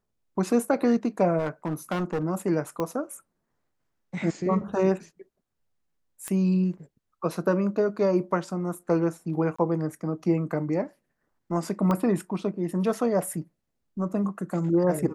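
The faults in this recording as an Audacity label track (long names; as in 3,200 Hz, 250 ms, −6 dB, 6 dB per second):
1.380000	2.240000	clipping −23.5 dBFS
2.800000	2.800000	click −16 dBFS
6.280000	6.280000	click −17 dBFS
9.560000	9.590000	drop-out 25 ms
11.910000	11.910000	click −15 dBFS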